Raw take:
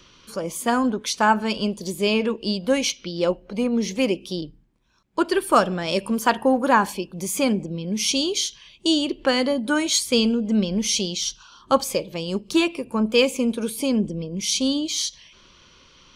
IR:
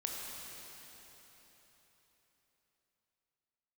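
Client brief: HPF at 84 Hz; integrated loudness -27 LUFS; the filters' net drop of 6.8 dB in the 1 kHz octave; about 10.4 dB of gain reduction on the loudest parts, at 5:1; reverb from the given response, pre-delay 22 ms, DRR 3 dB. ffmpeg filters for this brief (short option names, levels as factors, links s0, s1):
-filter_complex "[0:a]highpass=84,equalizer=f=1000:t=o:g=-8.5,acompressor=threshold=0.0447:ratio=5,asplit=2[s0][s1];[1:a]atrim=start_sample=2205,adelay=22[s2];[s1][s2]afir=irnorm=-1:irlink=0,volume=0.562[s3];[s0][s3]amix=inputs=2:normalize=0,volume=1.26"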